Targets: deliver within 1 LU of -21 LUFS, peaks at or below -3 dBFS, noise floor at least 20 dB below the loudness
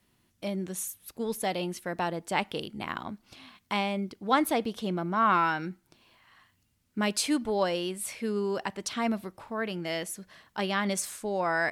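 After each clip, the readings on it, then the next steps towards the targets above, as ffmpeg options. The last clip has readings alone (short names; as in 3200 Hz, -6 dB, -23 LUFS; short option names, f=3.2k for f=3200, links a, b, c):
loudness -30.5 LUFS; peak -11.0 dBFS; loudness target -21.0 LUFS
-> -af "volume=9.5dB,alimiter=limit=-3dB:level=0:latency=1"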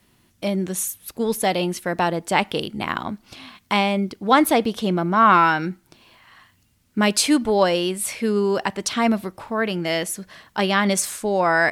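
loudness -21.0 LUFS; peak -3.0 dBFS; noise floor -62 dBFS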